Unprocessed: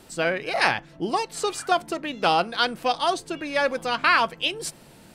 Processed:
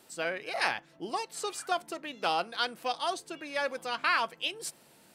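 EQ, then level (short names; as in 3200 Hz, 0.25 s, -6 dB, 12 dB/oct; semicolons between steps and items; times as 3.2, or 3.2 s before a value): HPF 340 Hz 6 dB/oct; high shelf 9300 Hz +6 dB; -8.0 dB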